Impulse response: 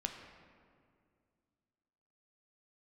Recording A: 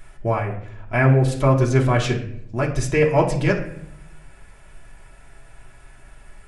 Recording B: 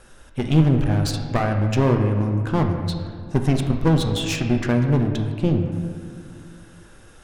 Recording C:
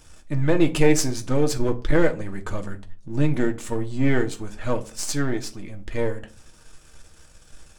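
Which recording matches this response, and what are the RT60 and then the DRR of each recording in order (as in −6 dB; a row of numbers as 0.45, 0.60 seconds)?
B; 0.70, 2.2, 0.40 seconds; −3.0, 3.5, 4.0 decibels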